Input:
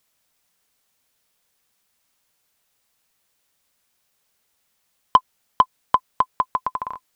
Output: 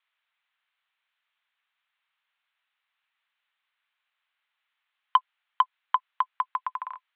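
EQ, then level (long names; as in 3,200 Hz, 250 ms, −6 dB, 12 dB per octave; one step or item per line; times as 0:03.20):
Bessel high-pass filter 1,500 Hz, order 4
Butterworth low-pass 3,700 Hz 48 dB per octave
high-frequency loss of the air 270 metres
+2.5 dB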